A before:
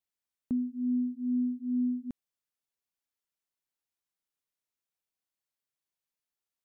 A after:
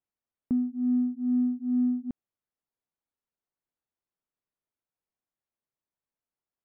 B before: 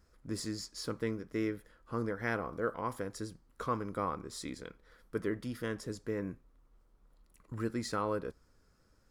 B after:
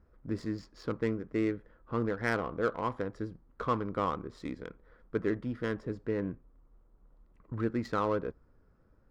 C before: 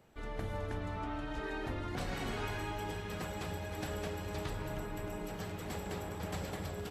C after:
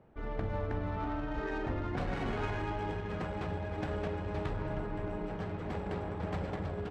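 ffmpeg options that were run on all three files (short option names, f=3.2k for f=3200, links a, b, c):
-af "adynamicsmooth=sensitivity=6:basefreq=1.5k,volume=4dB"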